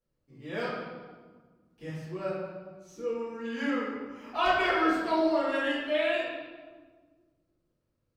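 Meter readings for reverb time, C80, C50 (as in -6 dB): 1.5 s, 2.0 dB, -1.0 dB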